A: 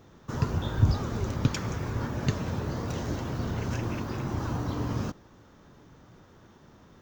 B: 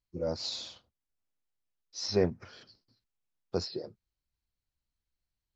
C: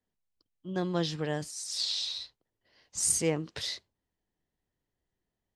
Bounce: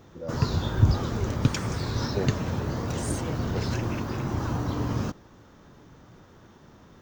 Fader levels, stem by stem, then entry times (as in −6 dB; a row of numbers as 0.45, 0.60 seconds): +2.5, −4.5, −11.5 decibels; 0.00, 0.00, 0.00 seconds